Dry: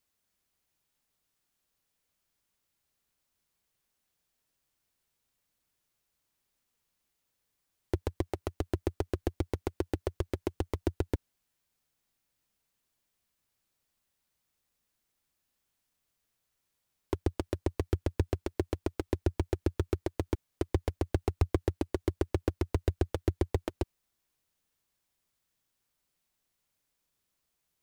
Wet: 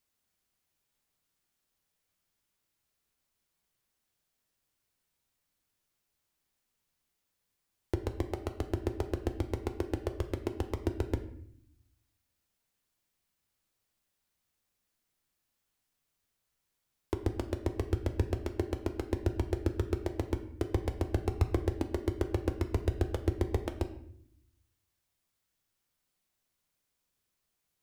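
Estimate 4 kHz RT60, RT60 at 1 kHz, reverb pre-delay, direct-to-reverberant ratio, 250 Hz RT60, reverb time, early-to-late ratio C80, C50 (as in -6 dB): 0.50 s, 0.60 s, 9 ms, 7.0 dB, 1.1 s, 0.65 s, 14.0 dB, 11.5 dB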